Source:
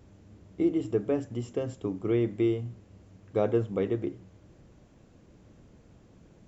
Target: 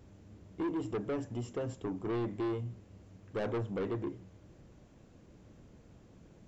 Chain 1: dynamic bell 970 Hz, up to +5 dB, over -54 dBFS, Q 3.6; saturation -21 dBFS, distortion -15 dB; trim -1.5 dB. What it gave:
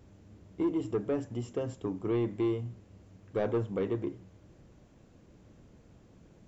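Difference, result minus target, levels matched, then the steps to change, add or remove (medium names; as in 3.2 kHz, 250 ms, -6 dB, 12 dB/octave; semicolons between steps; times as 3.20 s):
saturation: distortion -8 dB
change: saturation -29 dBFS, distortion -7 dB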